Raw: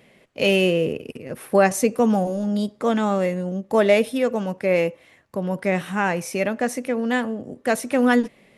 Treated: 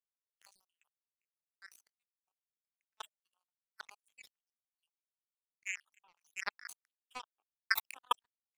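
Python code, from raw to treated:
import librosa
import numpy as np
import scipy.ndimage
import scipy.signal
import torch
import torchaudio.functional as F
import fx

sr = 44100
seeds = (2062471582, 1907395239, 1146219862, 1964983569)

y = fx.spec_dropout(x, sr, seeds[0], share_pct=82)
y = scipy.signal.sosfilt(scipy.signal.butter(12, 820.0, 'highpass', fs=sr, output='sos'), y)
y = fx.step_gate(y, sr, bpm=185, pattern='.x...xxx.', floor_db=-12.0, edge_ms=4.5)
y = fx.power_curve(y, sr, exponent=3.0)
y = fx.sustainer(y, sr, db_per_s=110.0)
y = y * 10.0 ** (7.5 / 20.0)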